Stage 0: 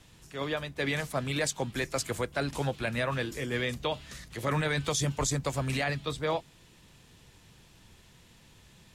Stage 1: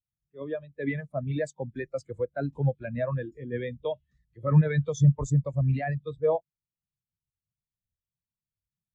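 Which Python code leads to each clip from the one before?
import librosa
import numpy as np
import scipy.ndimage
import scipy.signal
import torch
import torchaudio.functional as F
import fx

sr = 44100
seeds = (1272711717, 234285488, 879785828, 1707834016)

y = fx.spectral_expand(x, sr, expansion=2.5)
y = y * librosa.db_to_amplitude(7.0)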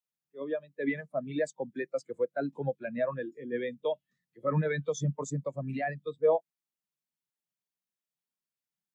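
y = scipy.signal.sosfilt(scipy.signal.butter(4, 200.0, 'highpass', fs=sr, output='sos'), x)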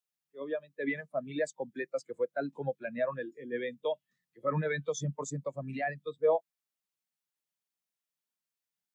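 y = fx.low_shelf(x, sr, hz=460.0, db=-6.0)
y = y * librosa.db_to_amplitude(1.0)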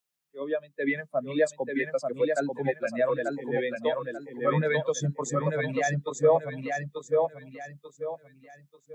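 y = fx.echo_feedback(x, sr, ms=889, feedback_pct=32, wet_db=-3.5)
y = y * librosa.db_to_amplitude(5.5)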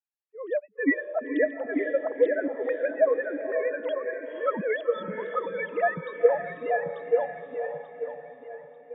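y = fx.sine_speech(x, sr)
y = fx.vibrato(y, sr, rate_hz=6.3, depth_cents=43.0)
y = fx.echo_diffused(y, sr, ms=504, feedback_pct=41, wet_db=-7.5)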